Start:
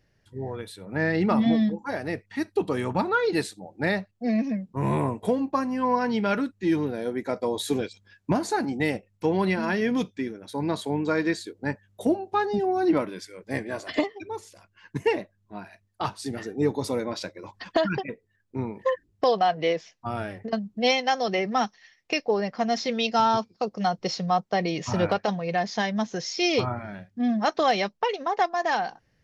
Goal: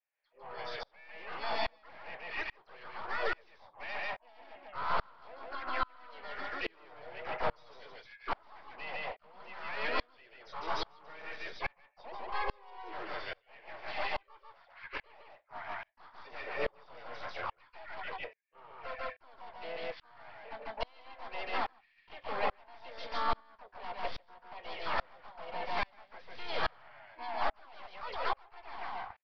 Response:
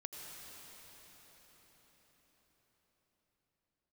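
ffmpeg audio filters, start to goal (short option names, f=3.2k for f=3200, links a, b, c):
-filter_complex "[0:a]highpass=f=630:w=0.5412,highpass=f=630:w=1.3066,adynamicequalizer=threshold=0.00562:dfrequency=1100:dqfactor=7:tfrequency=1100:tqfactor=7:attack=5:release=100:ratio=0.375:range=2.5:mode=boostabove:tftype=bell,acompressor=threshold=-26dB:ratio=10,aeval=exprs='(tanh(100*val(0)+0.4)-tanh(0.4))/100':c=same,flanger=delay=6.4:depth=2.6:regen=-76:speed=0.15:shape=sinusoidal,asuperstop=centerf=2700:order=4:qfactor=3.2,asplit=2[a][b];[b]aecho=0:1:147:0.708[c];[a][c]amix=inputs=2:normalize=0,aresample=8000,aresample=44100,asplit=4[d][e][f][g];[e]asetrate=55563,aresample=44100,atempo=0.793701,volume=-4dB[h];[f]asetrate=58866,aresample=44100,atempo=0.749154,volume=-4dB[i];[g]asetrate=66075,aresample=44100,atempo=0.66742,volume=-11dB[j];[d][h][i][j]amix=inputs=4:normalize=0,aeval=exprs='val(0)*pow(10,-33*if(lt(mod(-1.2*n/s,1),2*abs(-1.2)/1000),1-mod(-1.2*n/s,1)/(2*abs(-1.2)/1000),(mod(-1.2*n/s,1)-2*abs(-1.2)/1000)/(1-2*abs(-1.2)/1000))/20)':c=same,volume=13.5dB"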